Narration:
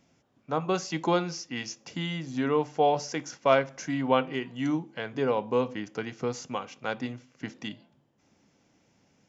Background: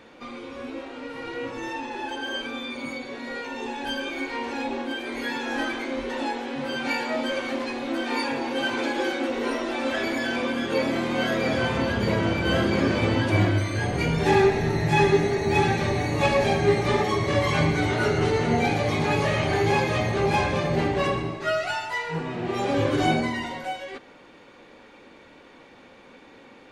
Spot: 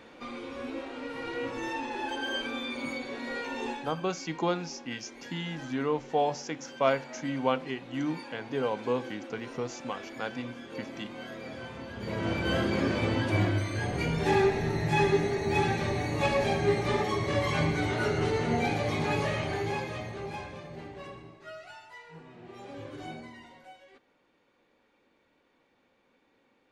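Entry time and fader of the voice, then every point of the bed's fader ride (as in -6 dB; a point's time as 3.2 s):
3.35 s, -3.5 dB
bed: 3.71 s -2 dB
3.97 s -17 dB
11.9 s -17 dB
12.31 s -5.5 dB
19.19 s -5.5 dB
20.7 s -19.5 dB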